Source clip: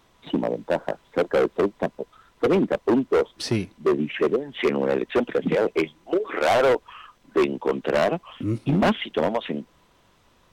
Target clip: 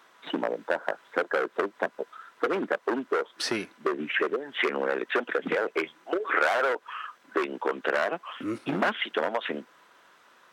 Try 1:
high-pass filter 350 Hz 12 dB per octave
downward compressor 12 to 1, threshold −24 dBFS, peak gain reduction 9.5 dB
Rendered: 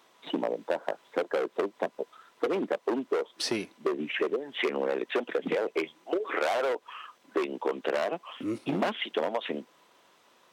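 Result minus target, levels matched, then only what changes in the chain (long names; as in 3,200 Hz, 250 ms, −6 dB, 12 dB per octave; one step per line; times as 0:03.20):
2,000 Hz band −5.0 dB
add after downward compressor: parametric band 1,500 Hz +10.5 dB 0.82 octaves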